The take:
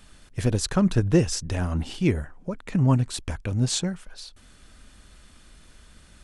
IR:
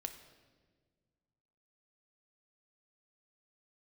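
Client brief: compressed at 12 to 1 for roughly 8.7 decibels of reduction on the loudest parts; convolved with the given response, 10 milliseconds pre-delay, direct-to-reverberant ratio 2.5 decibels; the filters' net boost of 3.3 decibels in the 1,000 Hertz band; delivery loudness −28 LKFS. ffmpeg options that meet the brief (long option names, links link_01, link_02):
-filter_complex "[0:a]equalizer=frequency=1000:width_type=o:gain=4,acompressor=threshold=-22dB:ratio=12,asplit=2[link_01][link_02];[1:a]atrim=start_sample=2205,adelay=10[link_03];[link_02][link_03]afir=irnorm=-1:irlink=0,volume=0dB[link_04];[link_01][link_04]amix=inputs=2:normalize=0,volume=-1dB"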